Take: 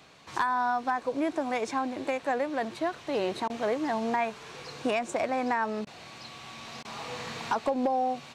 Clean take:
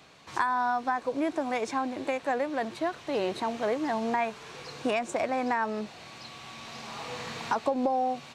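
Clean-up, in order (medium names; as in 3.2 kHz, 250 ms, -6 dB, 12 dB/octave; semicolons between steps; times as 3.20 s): clip repair -18.5 dBFS; interpolate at 3.48/5.85/6.83 s, 17 ms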